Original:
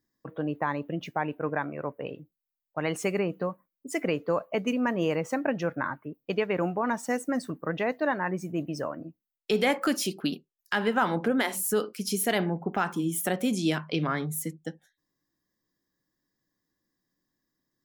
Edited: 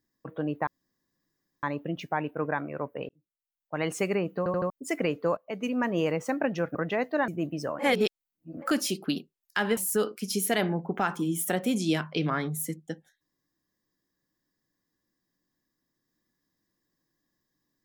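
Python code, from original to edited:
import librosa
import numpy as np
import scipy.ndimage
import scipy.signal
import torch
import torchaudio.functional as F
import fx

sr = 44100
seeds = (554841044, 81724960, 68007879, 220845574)

y = fx.edit(x, sr, fx.insert_room_tone(at_s=0.67, length_s=0.96),
    fx.fade_in_span(start_s=2.13, length_s=0.77),
    fx.stutter_over(start_s=3.42, slice_s=0.08, count=4),
    fx.fade_in_from(start_s=4.41, length_s=0.62, curve='qsin', floor_db=-18.0),
    fx.cut(start_s=5.79, length_s=1.84),
    fx.cut(start_s=8.16, length_s=0.28),
    fx.reverse_span(start_s=8.95, length_s=0.83),
    fx.cut(start_s=10.93, length_s=0.61), tone=tone)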